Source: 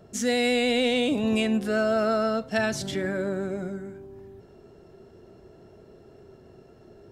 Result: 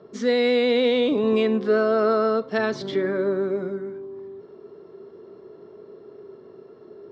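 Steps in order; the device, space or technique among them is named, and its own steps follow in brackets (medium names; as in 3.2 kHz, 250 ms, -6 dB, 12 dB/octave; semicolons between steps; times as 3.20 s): kitchen radio (cabinet simulation 200–4300 Hz, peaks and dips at 420 Hz +9 dB, 730 Hz -6 dB, 1.1 kHz +8 dB, 1.6 kHz -3 dB, 2.7 kHz -8 dB); trim +2.5 dB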